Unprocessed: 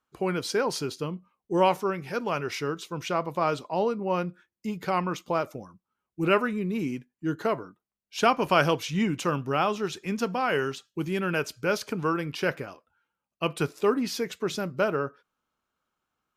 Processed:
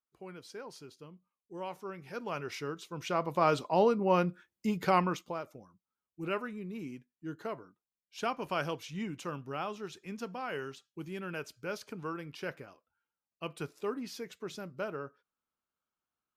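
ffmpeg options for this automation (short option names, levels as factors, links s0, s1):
-af "volume=1.06,afade=t=in:st=1.66:d=0.72:silence=0.281838,afade=t=in:st=2.91:d=0.71:silence=0.375837,afade=t=out:st=4.94:d=0.41:silence=0.237137"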